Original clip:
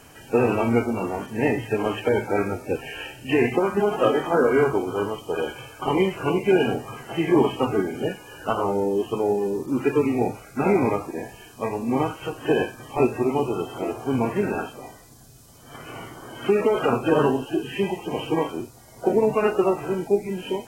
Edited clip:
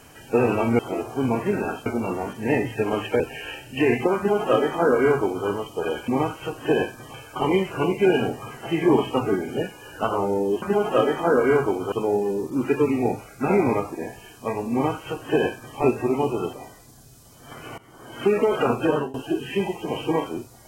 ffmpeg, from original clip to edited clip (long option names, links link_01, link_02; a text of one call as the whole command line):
ffmpeg -i in.wav -filter_complex "[0:a]asplit=11[link_01][link_02][link_03][link_04][link_05][link_06][link_07][link_08][link_09][link_10][link_11];[link_01]atrim=end=0.792[link_12];[link_02]atrim=start=13.688:end=14.762[link_13];[link_03]atrim=start=0.788:end=2.132[link_14];[link_04]atrim=start=2.718:end=5.602[link_15];[link_05]atrim=start=11.878:end=12.942[link_16];[link_06]atrim=start=5.598:end=9.082[link_17];[link_07]atrim=start=3.688:end=4.992[link_18];[link_08]atrim=start=9.078:end=13.692[link_19];[link_09]atrim=start=14.758:end=16.01,asetpts=PTS-STARTPTS,afade=type=out:start_time=1.248:duration=0.004:curve=hsin:silence=0.1[link_20];[link_10]atrim=start=16.01:end=17.37,asetpts=PTS-STARTPTS,afade=type=in:duration=0.41:silence=0.1,afade=type=out:start_time=1.06:duration=0.3:silence=0.0668344[link_21];[link_11]atrim=start=17.37,asetpts=PTS-STARTPTS,afade=type=in:duration=0.004:curve=hsin:silence=0.0668344[link_22];[link_12][link_13]acrossfade=duration=0.004:curve1=hsin:curve2=hsin[link_23];[link_23][link_14]acrossfade=duration=0.004:curve1=hsin:curve2=hsin[link_24];[link_24][link_15]acrossfade=duration=0.004:curve1=hsin:curve2=hsin[link_25];[link_25][link_16]acrossfade=duration=0.004:curve1=hsin:curve2=hsin[link_26];[link_26][link_17]acrossfade=duration=0.004:curve1=hsin:curve2=hsin[link_27];[link_27][link_18]acrossfade=duration=0.004:curve1=hsin:curve2=hsin[link_28];[link_28][link_19]acrossfade=duration=0.004:curve1=hsin:curve2=hsin[link_29];[link_20][link_21][link_22]concat=n=3:v=0:a=1[link_30];[link_29][link_30]acrossfade=duration=0.004:curve1=hsin:curve2=hsin" out.wav